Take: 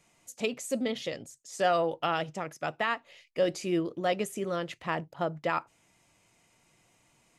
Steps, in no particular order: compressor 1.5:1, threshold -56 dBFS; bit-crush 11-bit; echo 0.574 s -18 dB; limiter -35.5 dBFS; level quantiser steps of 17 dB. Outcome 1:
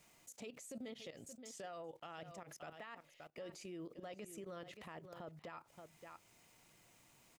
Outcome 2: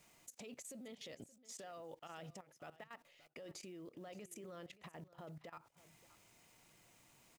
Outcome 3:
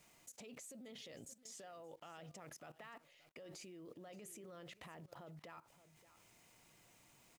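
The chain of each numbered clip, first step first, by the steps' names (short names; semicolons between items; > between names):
bit-crush > level quantiser > echo > limiter > compressor; limiter > bit-crush > compressor > level quantiser > echo; limiter > echo > bit-crush > level quantiser > compressor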